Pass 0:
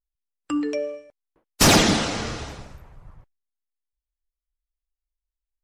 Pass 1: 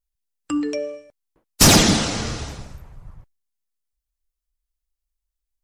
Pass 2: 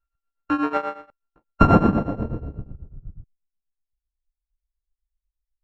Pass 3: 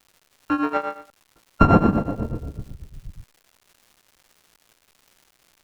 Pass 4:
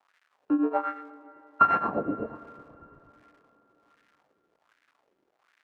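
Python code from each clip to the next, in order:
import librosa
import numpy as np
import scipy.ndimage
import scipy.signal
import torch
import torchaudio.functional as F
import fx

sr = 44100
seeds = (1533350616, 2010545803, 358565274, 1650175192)

y1 = fx.bass_treble(x, sr, bass_db=5, treble_db=6)
y2 = np.r_[np.sort(y1[:len(y1) // 32 * 32].reshape(-1, 32), axis=1).ravel(), y1[len(y1) // 32 * 32:]]
y2 = fx.tremolo_shape(y2, sr, shape='triangle', hz=8.2, depth_pct=90)
y2 = fx.filter_sweep_lowpass(y2, sr, from_hz=1500.0, to_hz=120.0, start_s=1.04, end_s=4.14, q=1.1)
y2 = F.gain(torch.from_numpy(y2), 5.0).numpy()
y3 = fx.dmg_crackle(y2, sr, seeds[0], per_s=330.0, level_db=-43.0)
y4 = fx.wah_lfo(y3, sr, hz=1.3, low_hz=330.0, high_hz=1800.0, q=2.4)
y4 = fx.rev_plate(y4, sr, seeds[1], rt60_s=3.9, hf_ratio=0.75, predelay_ms=0, drr_db=16.5)
y4 = F.gain(torch.from_numpy(y4), 1.5).numpy()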